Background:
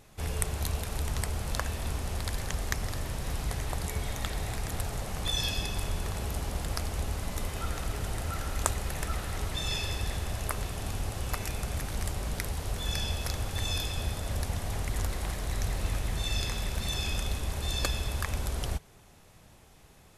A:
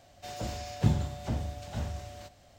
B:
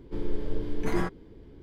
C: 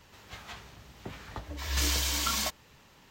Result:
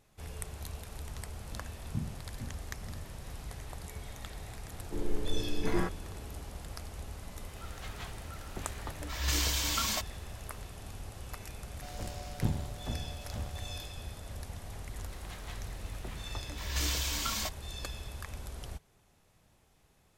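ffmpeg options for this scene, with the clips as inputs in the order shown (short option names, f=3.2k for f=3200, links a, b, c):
-filter_complex "[1:a]asplit=2[a][b];[3:a]asplit=2[c][d];[0:a]volume=-10.5dB[e];[a]lowpass=f=240:t=q:w=1.5[f];[b]aeval=exprs='if(lt(val(0),0),0.447*val(0),val(0))':c=same[g];[f]atrim=end=2.58,asetpts=PTS-STARTPTS,volume=-13dB,afade=t=in:d=0.004:c=hsin,afade=t=out:st=2.576:d=0.004:c=hsin,adelay=1110[h];[2:a]atrim=end=1.62,asetpts=PTS-STARTPTS,volume=-3dB,afade=t=in:d=0.004:c=hsin,afade=t=out:st=1.616:d=0.004:c=hsin,adelay=4800[i];[c]atrim=end=3.1,asetpts=PTS-STARTPTS,volume=-2dB,afade=t=in:d=0.004:c=hsin,afade=t=out:st=3.096:d=0.004:c=hsin,adelay=7510[j];[g]atrim=end=2.58,asetpts=PTS-STARTPTS,volume=-4dB,afade=t=in:d=0.004:c=hsin,afade=t=out:st=2.576:d=0.004:c=hsin,adelay=11590[k];[d]atrim=end=3.1,asetpts=PTS-STARTPTS,volume=-4.5dB,afade=t=in:d=0.004:c=hsin,afade=t=out:st=3.096:d=0.004:c=hsin,adelay=14990[l];[e][h][i][j][k][l]amix=inputs=6:normalize=0"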